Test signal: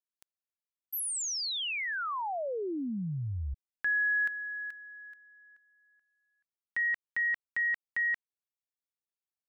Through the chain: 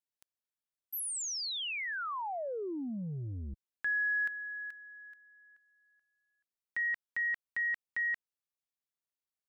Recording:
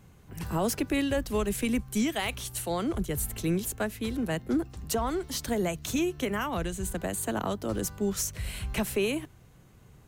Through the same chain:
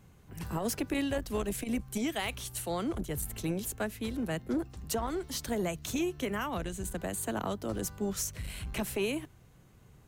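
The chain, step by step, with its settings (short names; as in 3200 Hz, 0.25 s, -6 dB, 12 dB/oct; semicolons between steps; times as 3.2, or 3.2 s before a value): core saturation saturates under 210 Hz; gain -3 dB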